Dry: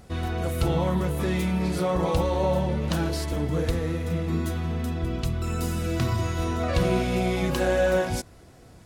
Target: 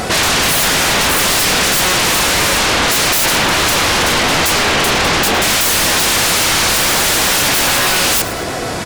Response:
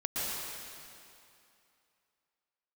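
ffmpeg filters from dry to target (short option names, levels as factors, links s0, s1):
-filter_complex "[0:a]asplit=2[s0][s1];[s1]highpass=f=720:p=1,volume=10,asoftclip=type=tanh:threshold=0.299[s2];[s0][s2]amix=inputs=2:normalize=0,lowpass=f=6300:p=1,volume=0.501,aeval=exprs='0.299*sin(PI/2*8.91*val(0)/0.299)':c=same,asplit=4[s3][s4][s5][s6];[s4]adelay=109,afreqshift=-53,volume=0.178[s7];[s5]adelay=218,afreqshift=-106,volume=0.0638[s8];[s6]adelay=327,afreqshift=-159,volume=0.0232[s9];[s3][s7][s8][s9]amix=inputs=4:normalize=0"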